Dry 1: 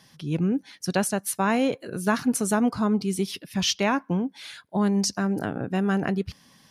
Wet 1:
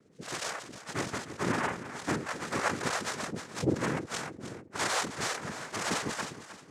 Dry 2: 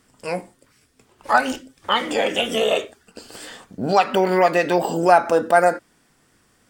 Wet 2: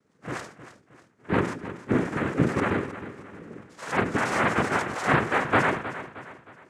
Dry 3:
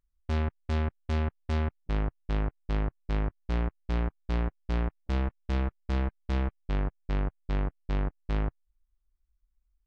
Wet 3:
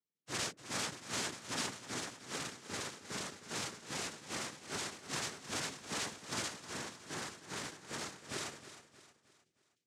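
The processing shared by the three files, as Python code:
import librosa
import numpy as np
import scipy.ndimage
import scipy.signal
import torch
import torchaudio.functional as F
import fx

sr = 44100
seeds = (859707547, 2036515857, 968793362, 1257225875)

p1 = fx.octave_mirror(x, sr, pivot_hz=600.0)
p2 = fx.lowpass(p1, sr, hz=3900.0, slope=6)
p3 = fx.noise_vocoder(p2, sr, seeds[0], bands=3)
p4 = p3 + fx.echo_feedback(p3, sr, ms=312, feedback_pct=42, wet_db=-13.0, dry=0)
p5 = fx.sustainer(p4, sr, db_per_s=110.0)
y = p5 * 10.0 ** (-6.5 / 20.0)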